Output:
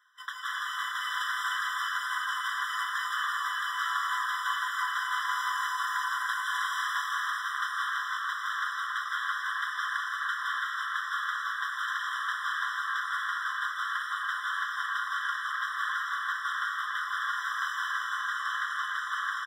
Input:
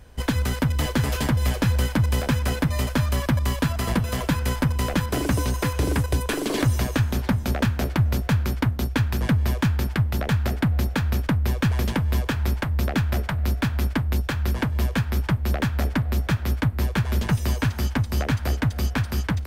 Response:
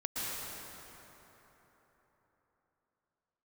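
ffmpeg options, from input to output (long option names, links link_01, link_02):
-filter_complex "[0:a]lowpass=frequency=2300:poles=1,equalizer=frequency=480:width_type=o:width=1.7:gain=5,asplit=2[link_01][link_02];[link_02]adelay=38,volume=-13dB[link_03];[link_01][link_03]amix=inputs=2:normalize=0[link_04];[1:a]atrim=start_sample=2205,asetrate=33075,aresample=44100[link_05];[link_04][link_05]afir=irnorm=-1:irlink=0,afftfilt=real='re*eq(mod(floor(b*sr/1024/1000),2),1)':imag='im*eq(mod(floor(b*sr/1024/1000),2),1)':win_size=1024:overlap=0.75,volume=-1.5dB"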